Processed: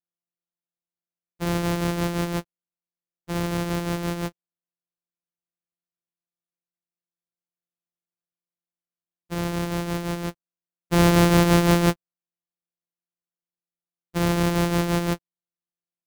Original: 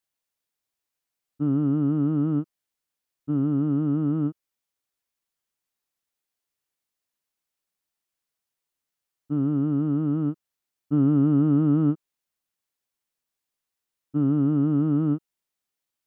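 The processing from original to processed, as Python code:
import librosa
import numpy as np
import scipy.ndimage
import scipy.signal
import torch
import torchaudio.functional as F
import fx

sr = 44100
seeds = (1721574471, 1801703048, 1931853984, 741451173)

y = np.r_[np.sort(x[:len(x) // 256 * 256].reshape(-1, 256), axis=1).ravel(), x[len(x) // 256 * 256:]]
y = fx.upward_expand(y, sr, threshold_db=-33.0, expansion=2.5)
y = y * 10.0 ** (4.0 / 20.0)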